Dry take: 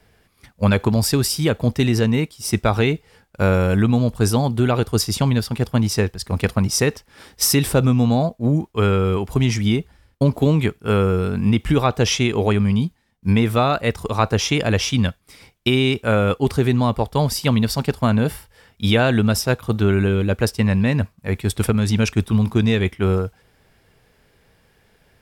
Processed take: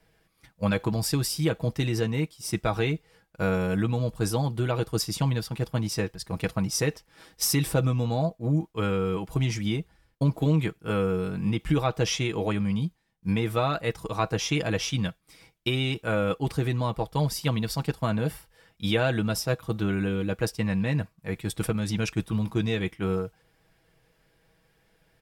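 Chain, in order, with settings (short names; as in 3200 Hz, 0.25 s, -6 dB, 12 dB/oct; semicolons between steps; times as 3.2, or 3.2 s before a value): comb 6.2 ms, depth 58%; gain -9 dB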